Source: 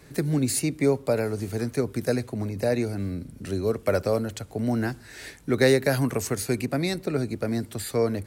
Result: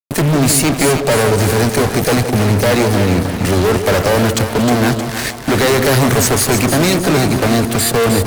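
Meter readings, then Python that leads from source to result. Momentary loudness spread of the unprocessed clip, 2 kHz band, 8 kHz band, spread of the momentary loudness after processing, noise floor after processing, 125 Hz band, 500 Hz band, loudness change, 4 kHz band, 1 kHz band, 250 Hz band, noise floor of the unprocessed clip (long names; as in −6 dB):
9 LU, +15.0 dB, +17.0 dB, 3 LU, −23 dBFS, +13.5 dB, +10.5 dB, +13.0 dB, +17.5 dB, +18.5 dB, +12.0 dB, −48 dBFS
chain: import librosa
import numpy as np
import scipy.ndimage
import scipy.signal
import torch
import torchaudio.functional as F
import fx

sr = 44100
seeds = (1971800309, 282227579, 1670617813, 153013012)

y = fx.fuzz(x, sr, gain_db=40.0, gate_db=-40.0)
y = fx.echo_split(y, sr, split_hz=690.0, low_ms=162, high_ms=311, feedback_pct=52, wet_db=-7.0)
y = F.gain(torch.from_numpy(y), 2.0).numpy()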